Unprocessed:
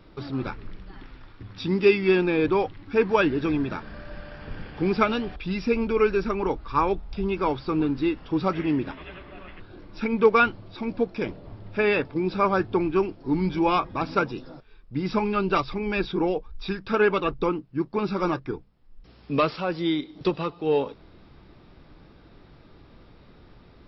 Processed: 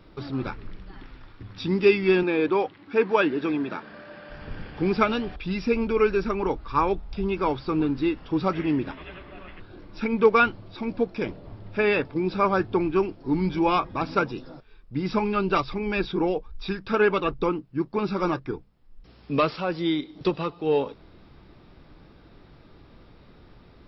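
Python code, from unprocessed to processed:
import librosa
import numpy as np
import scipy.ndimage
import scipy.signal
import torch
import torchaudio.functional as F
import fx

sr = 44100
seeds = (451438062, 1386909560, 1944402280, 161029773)

y = fx.bandpass_edges(x, sr, low_hz=220.0, high_hz=4900.0, at=(2.23, 4.3))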